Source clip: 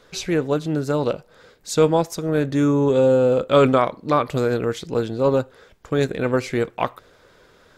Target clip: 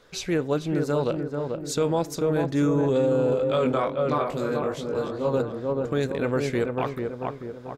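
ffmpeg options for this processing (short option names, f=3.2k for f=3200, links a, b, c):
-filter_complex "[0:a]asplit=2[a][b];[b]adelay=439,lowpass=f=1.3k:p=1,volume=-4.5dB,asplit=2[c][d];[d]adelay=439,lowpass=f=1.3k:p=1,volume=0.53,asplit=2[e][f];[f]adelay=439,lowpass=f=1.3k:p=1,volume=0.53,asplit=2[g][h];[h]adelay=439,lowpass=f=1.3k:p=1,volume=0.53,asplit=2[i][j];[j]adelay=439,lowpass=f=1.3k:p=1,volume=0.53,asplit=2[k][l];[l]adelay=439,lowpass=f=1.3k:p=1,volume=0.53,asplit=2[m][n];[n]adelay=439,lowpass=f=1.3k:p=1,volume=0.53[o];[a][c][e][g][i][k][m][o]amix=inputs=8:normalize=0,asplit=3[p][q][r];[p]afade=t=out:st=3.33:d=0.02[s];[q]flanger=delay=19.5:depth=2.1:speed=2.5,afade=t=in:st=3.33:d=0.02,afade=t=out:st=5.33:d=0.02[t];[r]afade=t=in:st=5.33:d=0.02[u];[s][t][u]amix=inputs=3:normalize=0,alimiter=limit=-11.5dB:level=0:latency=1:release=14,volume=-3.5dB"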